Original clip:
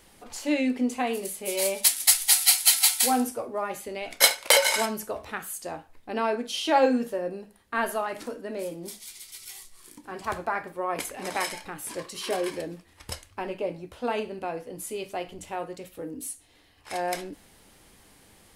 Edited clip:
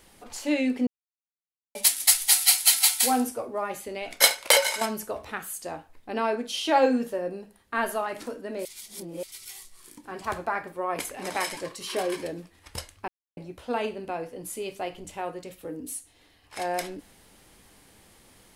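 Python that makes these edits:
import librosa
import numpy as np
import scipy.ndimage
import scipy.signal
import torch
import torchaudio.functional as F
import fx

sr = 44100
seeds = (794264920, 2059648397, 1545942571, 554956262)

y = fx.edit(x, sr, fx.silence(start_s=0.87, length_s=0.88),
    fx.fade_out_to(start_s=4.54, length_s=0.27, floor_db=-8.5),
    fx.reverse_span(start_s=8.65, length_s=0.58),
    fx.cut(start_s=11.57, length_s=0.34),
    fx.silence(start_s=13.42, length_s=0.29), tone=tone)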